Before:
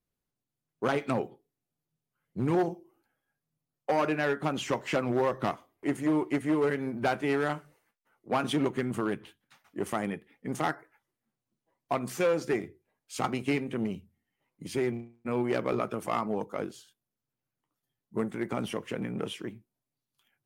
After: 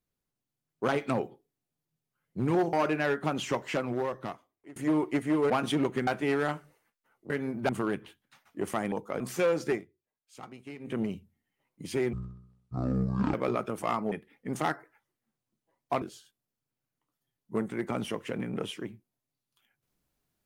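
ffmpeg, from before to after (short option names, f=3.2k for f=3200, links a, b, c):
-filter_complex "[0:a]asplit=15[a][b][c][d][e][f][g][h][i][j][k][l][m][n][o];[a]atrim=end=2.732[p];[b]atrim=start=3.918:end=5.95,asetpts=PTS-STARTPTS,afade=t=out:st=0.742:d=1.29:silence=0.0668344[q];[c]atrim=start=5.95:end=6.692,asetpts=PTS-STARTPTS,afade=t=in:d=0.004:c=hsin:silence=0.0668344[r];[d]atrim=start=8.308:end=8.882[s];[e]atrim=start=7.078:end=8.312[t];[f]atrim=start=6.688:end=7.082[u];[g]atrim=start=8.878:end=10.112[v];[h]atrim=start=16.358:end=16.642[w];[i]atrim=start=12.008:end=12.66,asetpts=PTS-STARTPTS,afade=t=out:st=0.522:d=0.13:silence=0.16788[x];[j]atrim=start=12.66:end=13.6,asetpts=PTS-STARTPTS,volume=-15.5dB[y];[k]atrim=start=13.6:end=14.944,asetpts=PTS-STARTPTS,afade=t=in:d=0.13:silence=0.16788[z];[l]atrim=start=14.94:end=15.58,asetpts=PTS-STARTPTS,asetrate=23373,aresample=44100[aa];[m]atrim=start=15.576:end=16.362[ab];[n]atrim=start=10.108:end=12.012[ac];[o]atrim=start=16.638[ad];[q][r]concat=n=2:v=0:a=1[ae];[p][ae]acrossfade=d=0.004:c1=hsin:c2=hsin[af];[af][s]acrossfade=d=0.004:c1=hsin:c2=hsin[ag];[ag][t]acrossfade=d=0.004:c1=hsin:c2=hsin[ah];[ah][u]acrossfade=d=0.004:c1=hsin:c2=hsin[ai];[ai][v]acrossfade=d=0.004:c1=hsin:c2=hsin[aj];[aj][w]acrossfade=d=0.004:c1=hsin:c2=hsin[ak];[x][y][z]concat=n=3:v=0:a=1[al];[ak][al]acrossfade=d=0.004:c1=hsin:c2=hsin[am];[am][aa]acrossfade=d=0.004:c1=hsin:c2=hsin[an];[an][ab]acrossfade=d=0.004:c1=hsin:c2=hsin[ao];[ao][ac]acrossfade=d=0.004:c1=hsin:c2=hsin[ap];[ap][ad]acrossfade=d=0.004:c1=hsin:c2=hsin"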